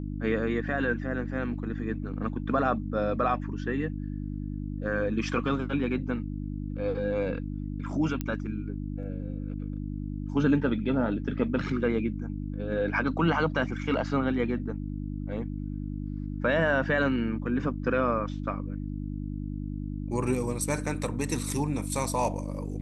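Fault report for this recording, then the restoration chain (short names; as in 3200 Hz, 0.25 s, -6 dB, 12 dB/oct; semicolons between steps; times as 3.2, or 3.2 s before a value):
hum 50 Hz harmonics 6 -34 dBFS
8.21 pop -17 dBFS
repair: de-click; de-hum 50 Hz, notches 6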